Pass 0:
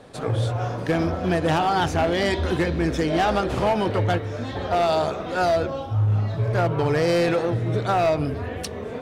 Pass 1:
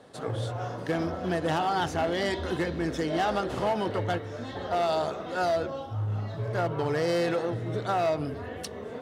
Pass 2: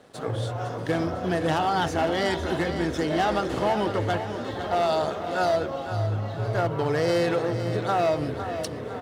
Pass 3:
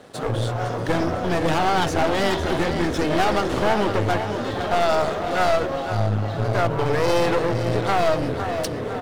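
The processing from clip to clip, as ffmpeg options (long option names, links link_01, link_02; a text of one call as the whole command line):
ffmpeg -i in.wav -af "highpass=frequency=140:poles=1,bandreject=frequency=2400:width=10,volume=-5.5dB" out.wav
ffmpeg -i in.wav -af "aeval=exprs='sgn(val(0))*max(abs(val(0))-0.001,0)':channel_layout=same,aecho=1:1:507|1014|1521|2028|2535|3042:0.316|0.164|0.0855|0.0445|0.0231|0.012,volume=3dB" out.wav
ffmpeg -i in.wav -af "aeval=exprs='clip(val(0),-1,0.0237)':channel_layout=same,volume=7dB" out.wav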